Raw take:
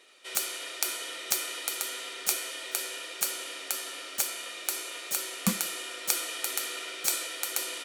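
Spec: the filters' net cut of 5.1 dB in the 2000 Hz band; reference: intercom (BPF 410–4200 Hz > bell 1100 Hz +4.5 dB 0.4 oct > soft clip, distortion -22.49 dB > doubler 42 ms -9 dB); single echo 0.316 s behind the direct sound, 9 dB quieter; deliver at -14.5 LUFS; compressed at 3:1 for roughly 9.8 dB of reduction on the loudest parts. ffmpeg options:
-filter_complex "[0:a]equalizer=f=2k:t=o:g=-6.5,acompressor=threshold=-37dB:ratio=3,highpass=410,lowpass=4.2k,equalizer=f=1.1k:t=o:w=0.4:g=4.5,aecho=1:1:316:0.355,asoftclip=threshold=-31.5dB,asplit=2[a][b];[b]adelay=42,volume=-9dB[c];[a][c]amix=inputs=2:normalize=0,volume=28.5dB"

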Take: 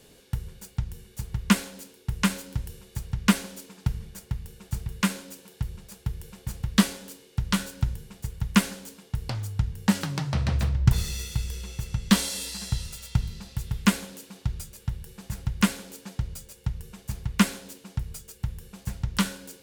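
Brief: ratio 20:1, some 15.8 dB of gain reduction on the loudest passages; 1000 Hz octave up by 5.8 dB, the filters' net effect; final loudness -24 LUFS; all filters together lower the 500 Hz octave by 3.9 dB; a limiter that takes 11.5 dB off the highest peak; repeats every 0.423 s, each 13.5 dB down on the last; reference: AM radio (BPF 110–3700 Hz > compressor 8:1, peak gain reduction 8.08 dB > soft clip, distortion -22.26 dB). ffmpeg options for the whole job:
-af "equalizer=f=500:t=o:g=-7.5,equalizer=f=1k:t=o:g=8.5,acompressor=threshold=-28dB:ratio=20,alimiter=limit=-24dB:level=0:latency=1,highpass=110,lowpass=3.7k,aecho=1:1:423|846:0.211|0.0444,acompressor=threshold=-39dB:ratio=8,asoftclip=threshold=-31dB,volume=23dB"

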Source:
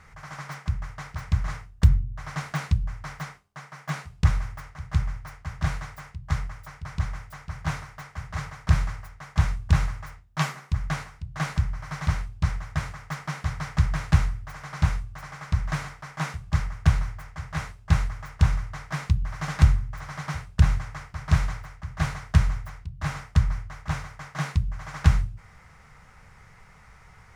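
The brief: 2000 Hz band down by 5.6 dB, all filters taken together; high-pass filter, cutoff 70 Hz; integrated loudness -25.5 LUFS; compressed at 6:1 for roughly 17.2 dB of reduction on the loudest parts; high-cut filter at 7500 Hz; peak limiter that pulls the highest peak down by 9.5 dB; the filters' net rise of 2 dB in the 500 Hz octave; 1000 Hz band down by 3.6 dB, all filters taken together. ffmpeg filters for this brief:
-af "highpass=70,lowpass=7.5k,equalizer=f=500:t=o:g=4.5,equalizer=f=1k:t=o:g=-4,equalizer=f=2k:t=o:g=-6,acompressor=threshold=-32dB:ratio=6,volume=17dB,alimiter=limit=-11.5dB:level=0:latency=1"

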